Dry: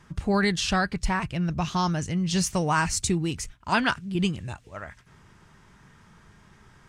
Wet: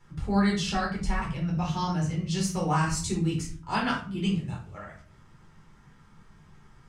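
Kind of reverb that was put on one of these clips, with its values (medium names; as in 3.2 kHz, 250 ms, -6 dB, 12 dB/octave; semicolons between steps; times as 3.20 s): simulated room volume 370 m³, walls furnished, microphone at 4.2 m; trim -11 dB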